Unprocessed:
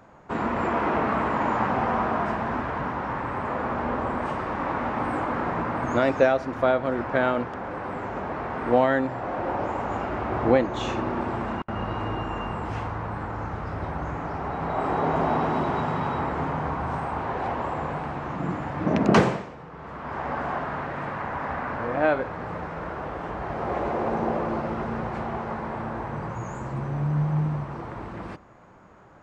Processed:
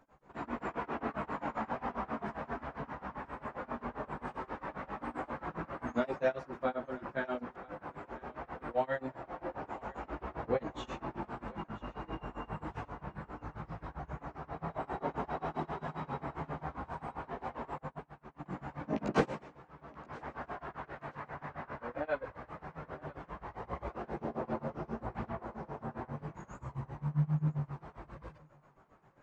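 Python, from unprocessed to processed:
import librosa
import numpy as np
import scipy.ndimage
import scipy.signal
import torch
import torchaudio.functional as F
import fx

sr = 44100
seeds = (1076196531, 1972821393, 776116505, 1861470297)

y = fx.chorus_voices(x, sr, voices=6, hz=0.33, base_ms=17, depth_ms=4.0, mix_pct=55)
y = y * (1.0 - 0.97 / 2.0 + 0.97 / 2.0 * np.cos(2.0 * np.pi * 7.5 * (np.arange(len(y)) / sr)))
y = fx.echo_thinned(y, sr, ms=977, feedback_pct=24, hz=400.0, wet_db=-21.0)
y = fx.upward_expand(y, sr, threshold_db=-42.0, expansion=2.5, at=(17.78, 18.46))
y = y * librosa.db_to_amplitude(-6.5)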